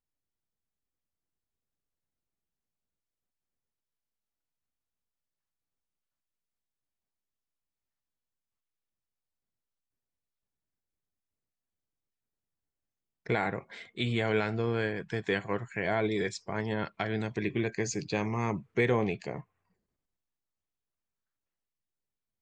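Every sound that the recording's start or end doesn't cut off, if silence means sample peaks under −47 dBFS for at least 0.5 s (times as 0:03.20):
0:13.26–0:19.41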